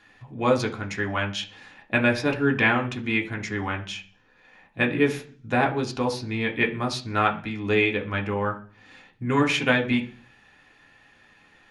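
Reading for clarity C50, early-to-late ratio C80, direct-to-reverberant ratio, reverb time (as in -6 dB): 13.0 dB, 17.5 dB, 0.5 dB, 0.40 s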